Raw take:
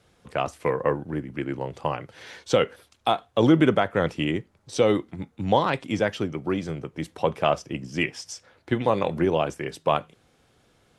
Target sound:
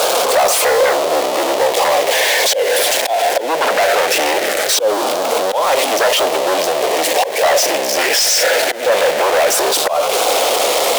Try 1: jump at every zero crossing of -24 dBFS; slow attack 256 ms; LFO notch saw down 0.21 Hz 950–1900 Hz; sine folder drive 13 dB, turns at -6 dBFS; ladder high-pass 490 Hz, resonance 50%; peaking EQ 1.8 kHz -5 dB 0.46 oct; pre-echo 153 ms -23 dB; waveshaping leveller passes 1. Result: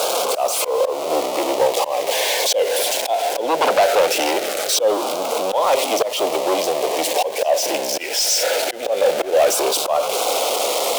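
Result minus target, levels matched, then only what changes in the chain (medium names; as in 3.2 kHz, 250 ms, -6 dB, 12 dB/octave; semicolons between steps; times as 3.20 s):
2 kHz band -4.5 dB; jump at every zero crossing: distortion -5 dB
change: jump at every zero crossing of -16.5 dBFS; change: peaking EQ 1.8 kHz +3.5 dB 0.46 oct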